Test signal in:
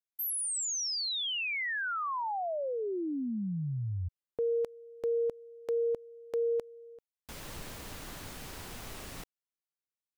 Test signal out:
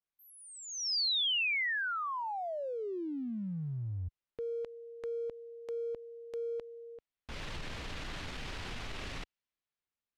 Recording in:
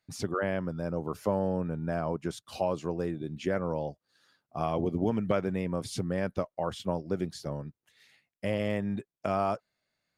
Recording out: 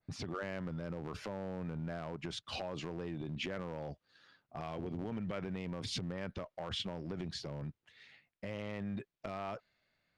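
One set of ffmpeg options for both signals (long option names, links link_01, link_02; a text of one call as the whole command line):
ffmpeg -i in.wav -af "lowpass=3300,lowshelf=frequency=80:gain=7,acompressor=threshold=-38dB:ratio=5:attack=0.16:release=52:knee=1:detection=peak,adynamicequalizer=threshold=0.00126:dfrequency=1700:dqfactor=0.7:tfrequency=1700:tqfactor=0.7:attack=5:release=100:ratio=0.417:range=4:mode=boostabove:tftype=highshelf,volume=2dB" out.wav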